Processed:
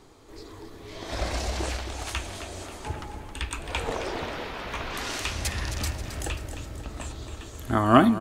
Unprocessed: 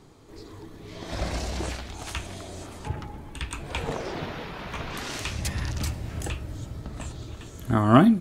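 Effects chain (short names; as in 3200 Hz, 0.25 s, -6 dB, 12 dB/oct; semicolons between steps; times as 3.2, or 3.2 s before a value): bell 150 Hz -9.5 dB 1.3 oct; on a send: feedback echo 0.268 s, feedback 49%, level -10 dB; on the sum: gain +2 dB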